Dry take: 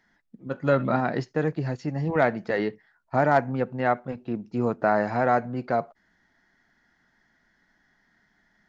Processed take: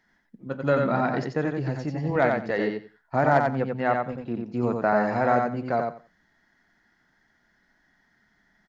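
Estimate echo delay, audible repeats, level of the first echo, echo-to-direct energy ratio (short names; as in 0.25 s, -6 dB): 90 ms, 3, -4.0 dB, -4.0 dB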